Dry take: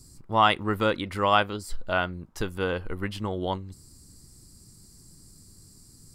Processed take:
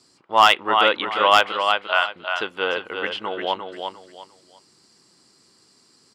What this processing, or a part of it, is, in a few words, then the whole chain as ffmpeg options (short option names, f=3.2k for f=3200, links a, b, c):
megaphone: -filter_complex "[0:a]asettb=1/sr,asplit=3[a][b][c];[a]atrim=end=1.524[d];[b]atrim=start=1.52:end=2.16,asetpts=PTS-STARTPTS,afade=t=in:d=0.004:c=qsin,afade=t=out:st=0.636:d=0.004:c=qsin,highpass=f=670:w=0.5412,highpass=f=670:w=1.3066[e];[c]atrim=start=2.156[f];[d][e]acrossfade=d=0.004:c1=hsin:c2=qsin[g];[g][f]acrossfade=d=0.004:c1=qsin:c2=hsin,highpass=520,lowpass=3.6k,equalizer=f=3k:t=o:w=0.54:g=7,aecho=1:1:350|700|1050:0.501|0.135|0.0365,asoftclip=type=hard:threshold=-11dB,volume=7dB"